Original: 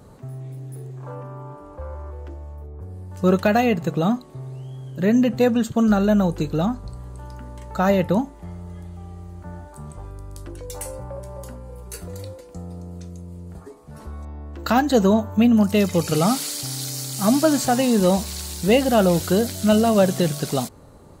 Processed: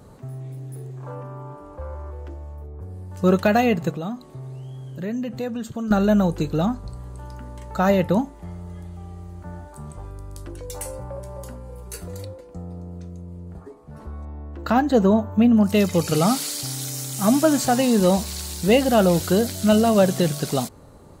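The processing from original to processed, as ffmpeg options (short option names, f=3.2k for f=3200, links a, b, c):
-filter_complex "[0:a]asettb=1/sr,asplit=3[a][b][c];[a]atrim=end=3.914[d];[b]atrim=start=3.91:end=5.91,asetpts=PTS-STARTPTS,afade=t=in:d=0.004:c=qsin,afade=t=out:st=1.996:d=0.004:c=qsin,acompressor=threshold=-33dB:ratio=2:attack=3.2:release=140:knee=1:detection=peak[e];[c]atrim=start=5.906[f];[d][e]acrossfade=d=0.004:c1=hsin:c2=qsin[g];[g][f]acrossfade=d=0.004:c1=qsin:c2=hsin,asettb=1/sr,asplit=3[h][i][j];[h]atrim=end=12.254[k];[i]atrim=start=12.25:end=15.66,asetpts=PTS-STARTPTS,afade=t=in:d=0.004:c=qsin,afade=t=out:st=3.406:d=0.004:c=qsin,highshelf=f=2.9k:g=-11[l];[j]atrim=start=15.656[m];[k][l]acrossfade=d=0.004:c1=hsin:c2=qsin[n];[n][m]acrossfade=d=0.004:c1=qsin:c2=hsin,asettb=1/sr,asplit=3[o][p][q];[o]atrim=end=16.724[r];[p]atrim=start=16.72:end=17.59,asetpts=PTS-STARTPTS,afade=t=in:d=0.004:c=qsin,afade=t=out:st=0.866:d=0.004:c=qsin,equalizer=f=4.5k:w=5.3:g=-8[s];[q]atrim=start=17.586[t];[r][s]acrossfade=d=0.004:c1=hsin:c2=qsin[u];[u][t]acrossfade=d=0.004:c1=qsin:c2=hsin"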